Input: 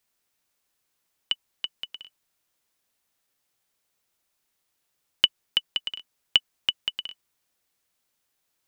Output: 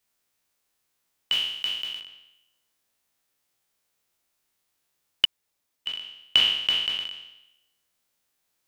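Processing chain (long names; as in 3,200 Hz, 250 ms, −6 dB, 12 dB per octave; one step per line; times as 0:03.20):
peak hold with a decay on every bin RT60 0.89 s
0:01.32–0:02.01: high-shelf EQ 5,400 Hz +9.5 dB
0:05.25–0:05.86: fill with room tone
level −2 dB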